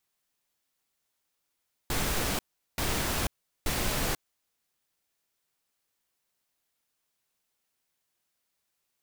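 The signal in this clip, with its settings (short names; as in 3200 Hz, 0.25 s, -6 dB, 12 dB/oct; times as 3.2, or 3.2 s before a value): noise bursts pink, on 0.49 s, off 0.39 s, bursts 3, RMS -29 dBFS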